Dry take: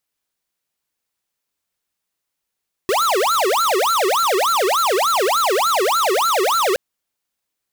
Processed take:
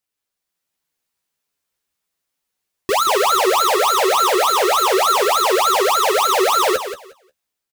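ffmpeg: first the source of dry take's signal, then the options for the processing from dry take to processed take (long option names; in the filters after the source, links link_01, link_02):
-f lavfi -i "aevalsrc='0.141*(2*lt(mod((868*t-502/(2*PI*3.4)*sin(2*PI*3.4*t)),1),0.5)-1)':duration=3.87:sample_rate=44100"
-filter_complex "[0:a]dynaudnorm=framelen=190:gausssize=5:maxgain=4.5dB,asplit=2[link_01][link_02];[link_02]aecho=0:1:179|358|537:0.316|0.0569|0.0102[link_03];[link_01][link_03]amix=inputs=2:normalize=0,flanger=delay=9.1:depth=5.4:regen=25:speed=0.33:shape=triangular"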